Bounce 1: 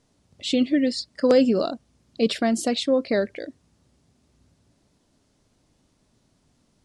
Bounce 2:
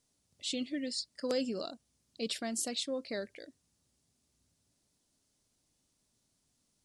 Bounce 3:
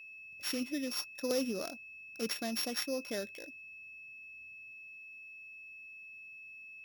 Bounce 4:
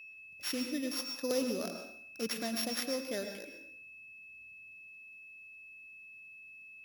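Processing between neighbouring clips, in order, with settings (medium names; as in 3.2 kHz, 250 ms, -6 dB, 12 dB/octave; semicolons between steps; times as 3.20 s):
pre-emphasis filter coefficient 0.8; trim -2.5 dB
sorted samples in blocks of 8 samples; whistle 2.6 kHz -48 dBFS
plate-style reverb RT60 0.62 s, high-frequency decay 0.85×, pre-delay 95 ms, DRR 5.5 dB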